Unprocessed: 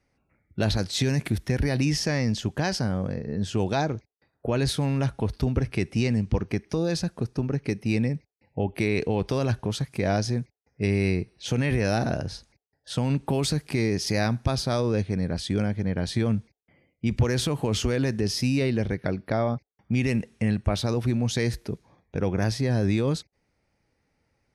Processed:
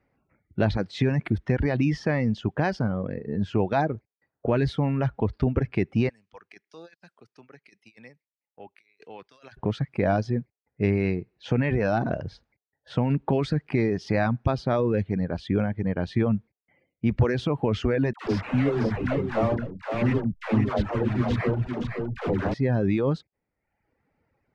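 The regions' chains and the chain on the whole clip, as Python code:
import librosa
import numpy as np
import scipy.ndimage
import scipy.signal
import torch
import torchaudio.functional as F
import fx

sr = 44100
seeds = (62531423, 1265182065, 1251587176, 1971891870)

y = fx.chain(x, sr, fx.differentiator(),
    fx.over_compress(threshold_db=-48.0, ratio=-0.5),
    fx.band_widen(depth_pct=70), at=(6.09, 9.57))
y = fx.chain(y, sr, fx.delta_hold(step_db=-25.5),
    fx.dispersion(late='lows', ms=126.0, hz=530.0),
    fx.echo_single(ms=512, db=-5.0), at=(18.13, 22.54))
y = scipy.signal.sosfilt(scipy.signal.butter(2, 2000.0, 'lowpass', fs=sr, output='sos'), y)
y = fx.dereverb_blind(y, sr, rt60_s=0.82)
y = fx.low_shelf(y, sr, hz=76.0, db=-7.5)
y = y * librosa.db_to_amplitude(3.5)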